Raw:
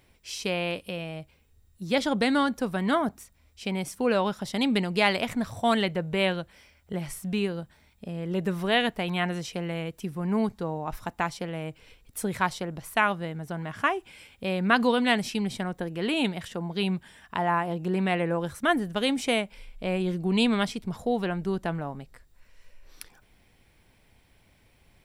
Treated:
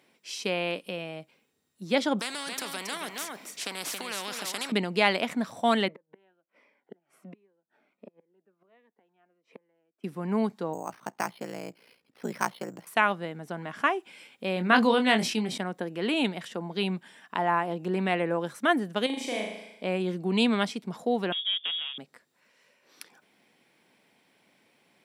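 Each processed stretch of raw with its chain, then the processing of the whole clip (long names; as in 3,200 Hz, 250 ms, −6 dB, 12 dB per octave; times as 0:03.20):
0:02.19–0:04.72: downward compressor 2.5 to 1, threshold −26 dBFS + single-tap delay 274 ms −11.5 dB + every bin compressed towards the loudest bin 4 to 1
0:05.88–0:10.04: three-way crossover with the lows and the highs turned down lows −23 dB, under 240 Hz, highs −23 dB, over 2,100 Hz + gate with flip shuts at −30 dBFS, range −34 dB + phaser whose notches keep moving one way falling 1.4 Hz
0:10.73–0:12.87: bad sample-rate conversion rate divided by 6×, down filtered, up hold + ring modulation 29 Hz
0:14.54–0:15.58: double-tracking delay 23 ms −7.5 dB + level that may fall only so fast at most 62 dB per second
0:19.06–0:19.83: notch comb filter 1,400 Hz + downward compressor 2 to 1, threshold −35 dBFS + flutter between parallel walls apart 6.4 metres, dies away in 0.8 s
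0:21.32–0:21.98: running median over 41 samples + voice inversion scrambler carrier 3,500 Hz
whole clip: high-pass filter 190 Hz 24 dB per octave; high-shelf EQ 11,000 Hz −8 dB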